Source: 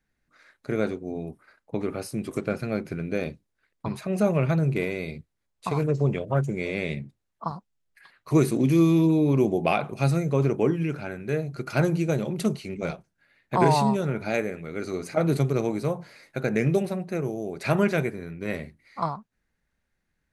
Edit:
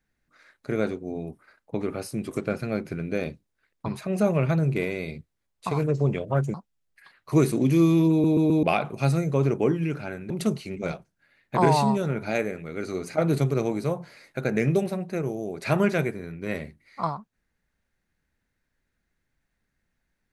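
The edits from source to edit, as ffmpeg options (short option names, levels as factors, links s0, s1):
-filter_complex "[0:a]asplit=7[s0][s1][s2][s3][s4][s5][s6];[s0]atrim=end=6.542[s7];[s1]atrim=start=7.528:end=9.232[s8];[s2]atrim=start=9.098:end=9.232[s9];[s3]atrim=start=9.098:end=9.232[s10];[s4]atrim=start=9.098:end=9.232[s11];[s5]atrim=start=9.618:end=11.292[s12];[s6]atrim=start=12.288[s13];[s7][s8]acrossfade=d=0.004:c1=hsin:c2=hsin[s14];[s14][s9]acrossfade=d=0.004:c1=hsin:c2=hsin[s15];[s15][s10]acrossfade=d=0.004:c1=hsin:c2=hsin[s16];[s16][s11]acrossfade=d=0.004:c1=hsin:c2=hsin[s17];[s17][s12]acrossfade=d=0.004:c1=hsin:c2=hsin[s18];[s18][s13]acrossfade=d=0.004:c1=hsin:c2=hsin"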